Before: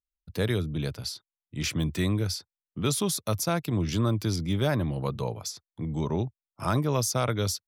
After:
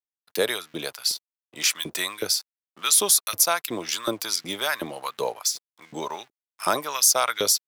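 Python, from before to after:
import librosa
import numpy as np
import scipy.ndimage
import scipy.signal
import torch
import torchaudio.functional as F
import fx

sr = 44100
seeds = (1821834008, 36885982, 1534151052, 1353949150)

y = np.sign(x) * np.maximum(np.abs(x) - 10.0 ** (-54.5 / 20.0), 0.0)
y = fx.filter_lfo_highpass(y, sr, shape='saw_up', hz=2.7, low_hz=370.0, high_hz=2000.0, q=1.3)
y = fx.high_shelf(y, sr, hz=5100.0, db=11.0)
y = y * librosa.db_to_amplitude(5.0)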